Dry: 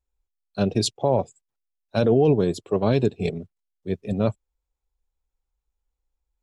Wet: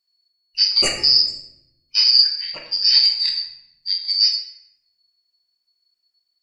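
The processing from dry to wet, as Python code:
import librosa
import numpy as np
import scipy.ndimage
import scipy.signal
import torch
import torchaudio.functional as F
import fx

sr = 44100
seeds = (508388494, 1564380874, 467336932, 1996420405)

y = fx.band_shuffle(x, sr, order='4321')
y = fx.lowpass(y, sr, hz=fx.line((2.21, 2600.0), (2.83, 4700.0)), slope=24, at=(2.21, 2.83), fade=0.02)
y = fx.room_shoebox(y, sr, seeds[0], volume_m3=290.0, walls='mixed', distance_m=1.1)
y = y * 10.0 ** (3.0 / 20.0)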